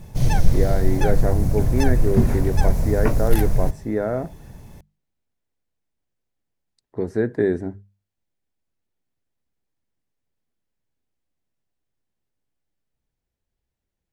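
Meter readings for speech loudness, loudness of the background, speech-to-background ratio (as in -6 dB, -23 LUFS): -25.5 LUFS, -22.5 LUFS, -3.0 dB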